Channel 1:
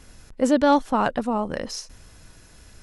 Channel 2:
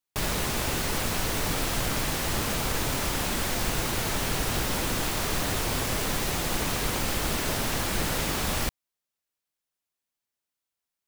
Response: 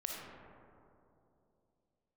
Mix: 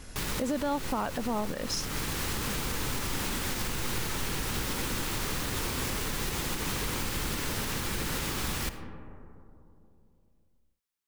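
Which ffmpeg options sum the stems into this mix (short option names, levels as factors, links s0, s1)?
-filter_complex "[0:a]acompressor=threshold=0.0501:ratio=3,volume=1.33,asplit=2[s0][s1];[1:a]equalizer=f=660:w=3.3:g=-9,volume=0.562,asplit=2[s2][s3];[s3]volume=0.531[s4];[s1]apad=whole_len=488190[s5];[s2][s5]sidechaincompress=threshold=0.0126:ratio=8:attack=16:release=356[s6];[2:a]atrim=start_sample=2205[s7];[s4][s7]afir=irnorm=-1:irlink=0[s8];[s0][s6][s8]amix=inputs=3:normalize=0,alimiter=limit=0.0841:level=0:latency=1:release=102"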